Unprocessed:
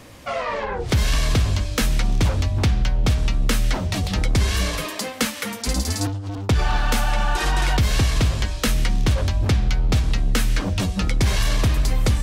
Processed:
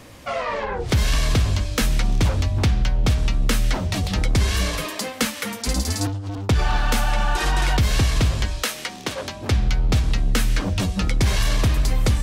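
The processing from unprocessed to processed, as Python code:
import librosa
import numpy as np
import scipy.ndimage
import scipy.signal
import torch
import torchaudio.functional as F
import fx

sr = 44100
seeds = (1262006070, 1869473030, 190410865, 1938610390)

y = fx.highpass(x, sr, hz=fx.line((8.62, 530.0), (9.5, 200.0)), slope=12, at=(8.62, 9.5), fade=0.02)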